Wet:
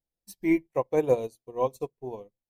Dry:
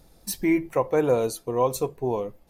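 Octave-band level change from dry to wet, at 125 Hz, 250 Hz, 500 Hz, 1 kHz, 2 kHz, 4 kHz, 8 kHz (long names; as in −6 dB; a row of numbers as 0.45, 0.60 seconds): −6.5 dB, −3.0 dB, −3.5 dB, −5.5 dB, −4.5 dB, below −10 dB, below −15 dB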